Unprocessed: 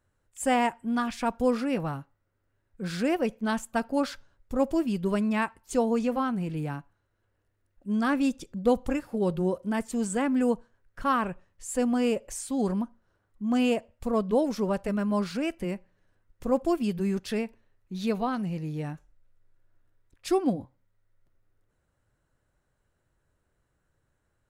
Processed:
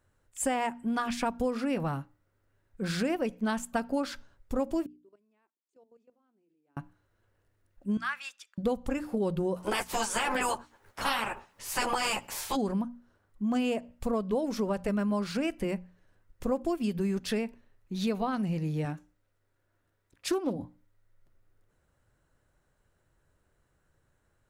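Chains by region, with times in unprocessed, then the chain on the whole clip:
4.86–6.77 s: band-pass filter 340 Hz, Q 4.2 + differentiator + level held to a coarse grid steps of 15 dB
7.97–8.58 s: high-pass 1.3 kHz 24 dB/octave + treble shelf 4.2 kHz -11.5 dB
9.56–12.55 s: spectral peaks clipped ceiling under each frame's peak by 30 dB + peaking EQ 870 Hz +7 dB 0.6 oct + three-phase chorus
18.85–20.56 s: high-pass 130 Hz 6 dB/octave + loudspeaker Doppler distortion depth 0.26 ms
whole clip: hum notches 60/120/180/240/300 Hz; compression, threshold -29 dBFS; trim +3 dB

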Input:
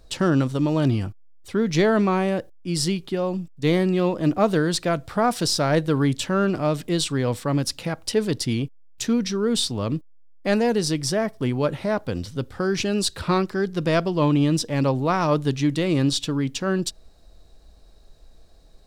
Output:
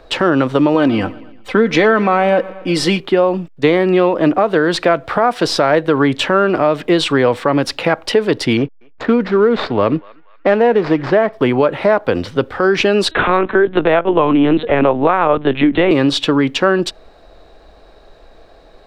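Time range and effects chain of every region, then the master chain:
0.74–3.00 s: comb 3.9 ms, depth 51% + feedback delay 116 ms, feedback 54%, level -22 dB
8.57–11.33 s: median filter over 15 samples + low-pass 5 kHz + band-passed feedback delay 239 ms, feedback 48%, band-pass 1.9 kHz, level -23 dB
13.11–15.91 s: LPC vocoder at 8 kHz pitch kept + three bands compressed up and down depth 40%
whole clip: three-band isolator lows -15 dB, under 320 Hz, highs -21 dB, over 3.1 kHz; compression, threshold -27 dBFS; loudness maximiser +19.5 dB; trim -1 dB

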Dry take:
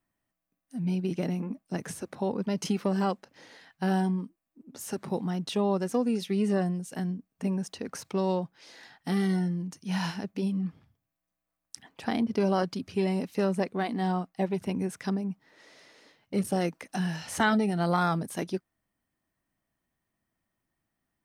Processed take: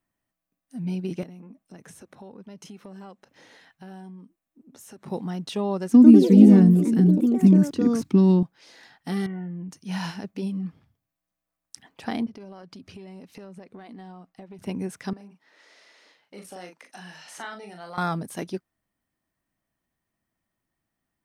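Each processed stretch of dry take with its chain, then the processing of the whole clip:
1.23–5.06 s: band-stop 4.7 kHz, Q 10 + compression 2.5:1, threshold -47 dBFS
5.92–8.43 s: resonant low shelf 390 Hz +11 dB, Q 3 + ever faster or slower copies 103 ms, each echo +4 st, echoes 3, each echo -6 dB
9.26–9.69 s: steep low-pass 2.9 kHz 72 dB/octave + compression 4:1, threshold -31 dBFS
12.26–14.59 s: compression 12:1, threshold -39 dBFS + treble shelf 8.2 kHz -6.5 dB
15.13–17.98 s: frequency weighting A + compression 1.5:1, threshold -54 dBFS + doubling 39 ms -5.5 dB
whole clip: none

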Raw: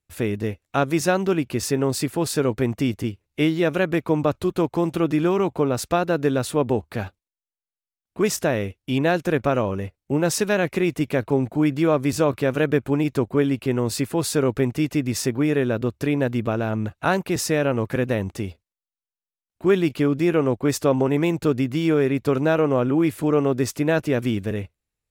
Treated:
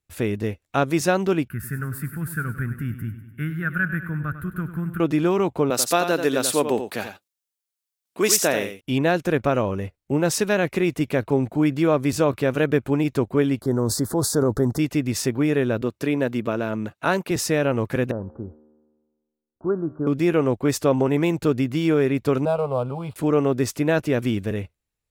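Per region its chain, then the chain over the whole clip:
1.48–5.00 s: FFT filter 190 Hz 0 dB, 270 Hz -13 dB, 540 Hz -24 dB, 950 Hz -20 dB, 1.5 kHz +10 dB, 2.2 kHz -11 dB, 3.9 kHz -26 dB, 6.2 kHz -25 dB, 12 kHz +1 dB + feedback delay 99 ms, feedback 59%, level -12 dB
5.70–8.81 s: high-pass 230 Hz + treble shelf 2.8 kHz +10.5 dB + delay 87 ms -8.5 dB
13.61–14.79 s: transient shaper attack 0 dB, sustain +7 dB + Butterworth band-stop 2.6 kHz, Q 0.83
15.82–17.31 s: high-pass 160 Hz + band-stop 770 Hz, Q 11
18.11–20.07 s: steep low-pass 1.5 kHz 96 dB/octave + feedback comb 76 Hz, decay 1.5 s, mix 50%
22.45–23.16 s: dead-time distortion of 0.06 ms + boxcar filter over 7 samples + static phaser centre 750 Hz, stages 4
whole clip: none

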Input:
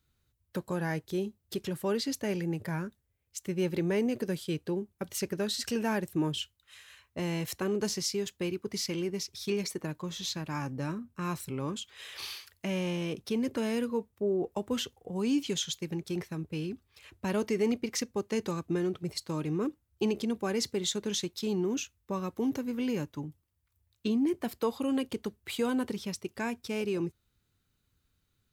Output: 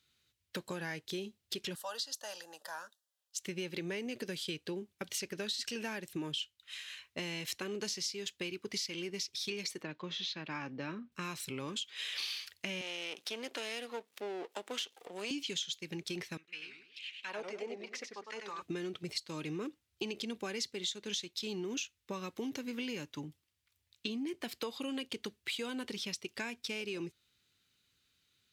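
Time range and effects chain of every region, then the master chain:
1.75–3.38 s: high-pass 420 Hz 24 dB/octave + static phaser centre 930 Hz, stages 4
9.83–11.12 s: high-pass 160 Hz + distance through air 220 m
12.81–15.31 s: partial rectifier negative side -12 dB + high-pass 410 Hz + upward compressor, threshold -39 dBFS
16.37–18.62 s: treble shelf 4.1 kHz +12 dB + auto-wah 630–3400 Hz, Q 3.1, down, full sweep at -24.5 dBFS + modulated delay 98 ms, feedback 34%, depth 217 cents, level -5 dB
whole clip: frequency weighting D; compression 5:1, threshold -34 dBFS; trim -2 dB

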